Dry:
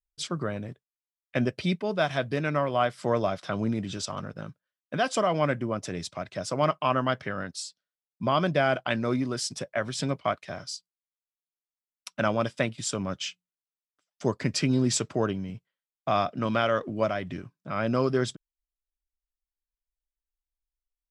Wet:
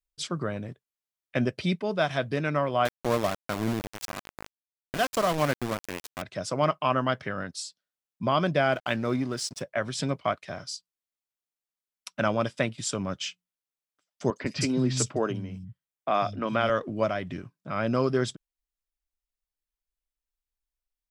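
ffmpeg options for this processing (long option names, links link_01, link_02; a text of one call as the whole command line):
ffmpeg -i in.wav -filter_complex "[0:a]asettb=1/sr,asplit=3[link_01][link_02][link_03];[link_01]atrim=end=2.854[link_04];[link_02]atrim=start=2.85:end=6.22,asetpts=PTS-STARTPTS,afade=type=in:duration=0.004:curve=qsin,afade=type=out:start_time=3.366:duration=0.004:curve=qsin,aeval=exprs='val(0)*gte(abs(val(0)),0.0447)':channel_layout=same[link_05];[link_03]atrim=start=6.216[link_06];[link_04][link_05]acrossfade=duration=0.004:curve1=hsin:curve2=qsin[link_07];[link_07][link_06]acrossfade=duration=0.004:curve1=qsin:curve2=hsin,asettb=1/sr,asplit=3[link_08][link_09][link_10];[link_08]atrim=end=8.724[link_11];[link_09]atrim=start=8.72:end=9.62,asetpts=PTS-STARTPTS,afade=type=in:duration=0.004:curve=qsin,afade=type=out:start_time=0.896:duration=0.004:curve=qsin,aeval=exprs='sgn(val(0))*max(abs(val(0))-0.00422,0)':channel_layout=same[link_12];[link_10]atrim=start=9.616[link_13];[link_11][link_12]acrossfade=duration=0.004:curve1=hsin:curve2=qsin[link_14];[link_14][link_13]acrossfade=duration=0.004:curve1=qsin:curve2=hsin,asettb=1/sr,asplit=3[link_15][link_16][link_17];[link_15]atrim=end=14.304[link_18];[link_16]atrim=start=14.3:end=16.7,asetpts=PTS-STARTPTS,afade=type=in:duration=0.004:curve=qsin,afade=type=out:start_time=2.396:duration=0.004:curve=qsin,acrossover=split=180|4200[link_19][link_20][link_21];[link_21]adelay=60[link_22];[link_19]adelay=140[link_23];[link_23][link_20][link_22]amix=inputs=3:normalize=0,atrim=end_sample=105840[link_24];[link_17]atrim=start=16.696[link_25];[link_18][link_24]acrossfade=duration=0.004:curve1=hsin:curve2=qsin[link_26];[link_26][link_25]acrossfade=duration=0.004:curve1=qsin:curve2=hsin" out.wav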